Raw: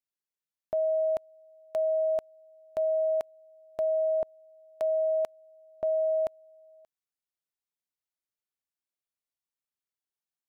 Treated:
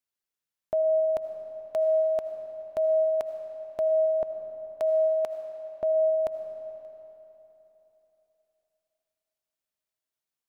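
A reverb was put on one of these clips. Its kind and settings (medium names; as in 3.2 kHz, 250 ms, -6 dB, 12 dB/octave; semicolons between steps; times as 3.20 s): algorithmic reverb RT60 3.5 s, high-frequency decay 0.8×, pre-delay 40 ms, DRR 7 dB; trim +2.5 dB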